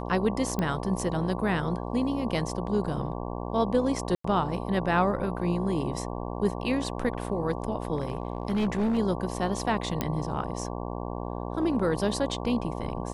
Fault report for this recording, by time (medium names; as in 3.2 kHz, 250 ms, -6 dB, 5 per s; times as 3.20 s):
buzz 60 Hz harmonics 19 -34 dBFS
0.59 s: pop -15 dBFS
4.15–4.24 s: dropout 94 ms
7.97–8.99 s: clipped -22.5 dBFS
10.01 s: pop -12 dBFS